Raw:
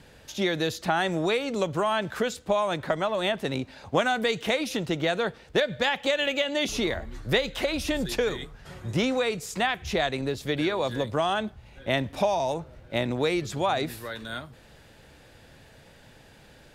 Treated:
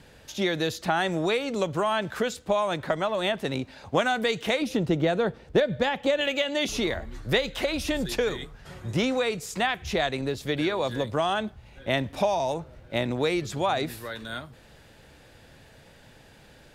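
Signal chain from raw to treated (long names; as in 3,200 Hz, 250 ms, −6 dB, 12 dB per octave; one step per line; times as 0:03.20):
0:04.62–0:06.21: tilt shelving filter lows +5.5 dB, about 880 Hz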